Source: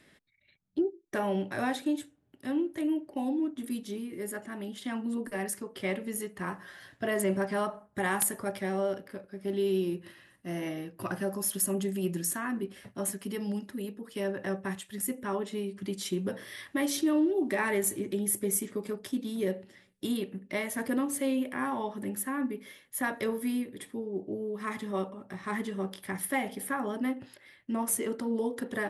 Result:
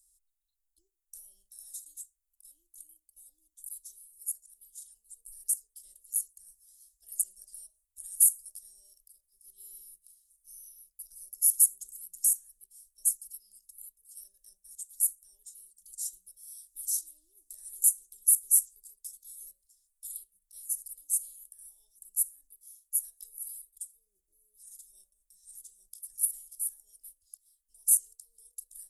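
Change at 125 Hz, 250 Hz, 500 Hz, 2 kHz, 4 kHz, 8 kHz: below −40 dB, below −40 dB, below −40 dB, below −40 dB, −14.5 dB, +8.0 dB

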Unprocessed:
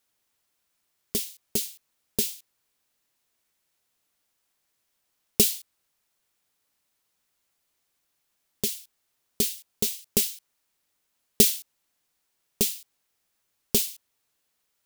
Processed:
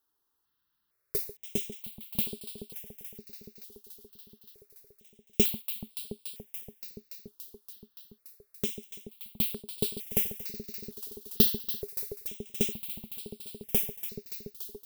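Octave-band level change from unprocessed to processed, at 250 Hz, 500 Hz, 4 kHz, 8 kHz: −1.0, −2.5, −6.5, −11.0 decibels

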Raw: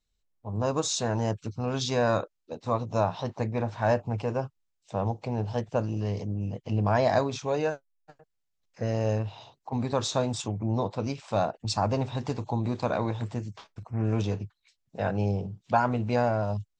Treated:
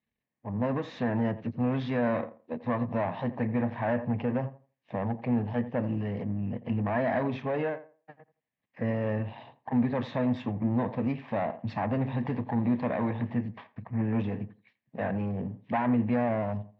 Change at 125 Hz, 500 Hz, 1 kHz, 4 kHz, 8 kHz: −3.0 dB, −3.5 dB, −4.0 dB, −13.5 dB, below −30 dB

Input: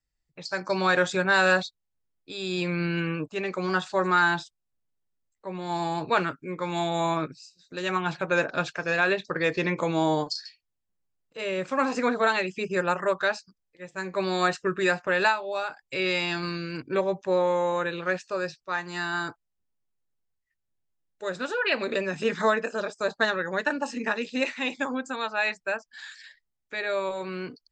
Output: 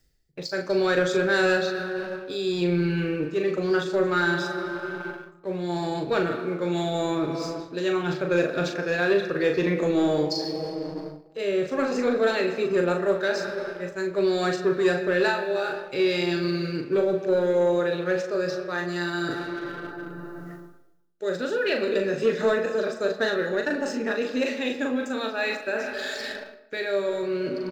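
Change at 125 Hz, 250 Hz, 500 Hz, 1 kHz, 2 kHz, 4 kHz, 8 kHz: +2.5, +5.0, +4.5, −4.0, −1.5, +0.5, 0.0 decibels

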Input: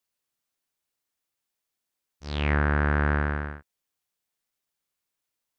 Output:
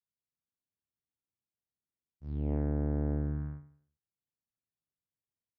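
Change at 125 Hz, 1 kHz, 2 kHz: −6.0, −20.0, −31.5 decibels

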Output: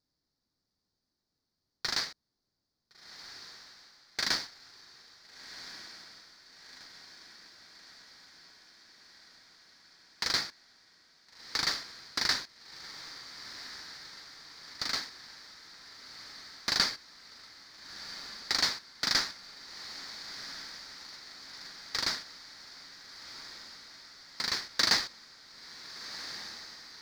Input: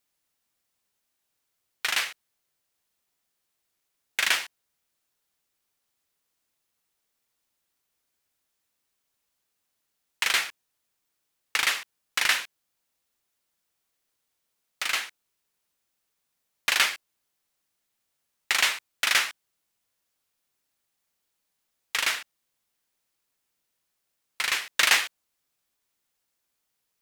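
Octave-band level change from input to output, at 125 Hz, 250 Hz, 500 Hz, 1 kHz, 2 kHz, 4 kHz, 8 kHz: can't be measured, +6.0 dB, −2.5 dB, −6.0 dB, −10.0 dB, −2.5 dB, −7.0 dB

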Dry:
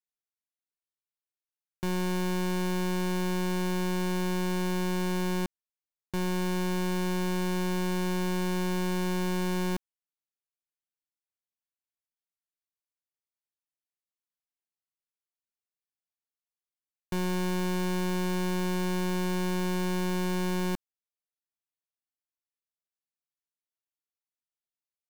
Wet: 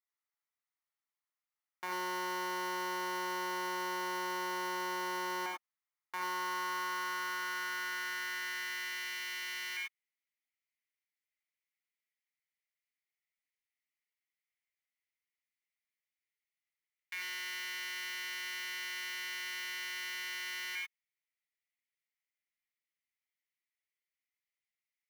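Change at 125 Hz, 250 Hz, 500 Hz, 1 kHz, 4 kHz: below −30 dB, −21.0 dB, −13.5 dB, −1.5 dB, −1.0 dB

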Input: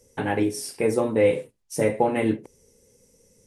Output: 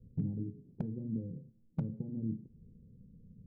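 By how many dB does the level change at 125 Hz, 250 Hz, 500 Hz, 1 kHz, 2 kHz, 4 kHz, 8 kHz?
−4.5 dB, −12.0 dB, −30.5 dB, −34.0 dB, below −35 dB, below −40 dB, below −40 dB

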